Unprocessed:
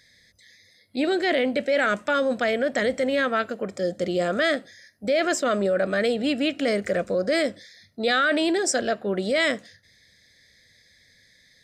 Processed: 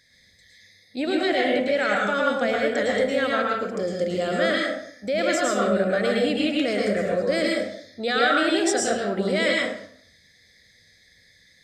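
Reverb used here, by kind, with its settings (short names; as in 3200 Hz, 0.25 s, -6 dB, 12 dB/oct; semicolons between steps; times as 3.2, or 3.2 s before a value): plate-style reverb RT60 0.63 s, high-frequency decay 0.7×, pre-delay 95 ms, DRR -2.5 dB; gain -3 dB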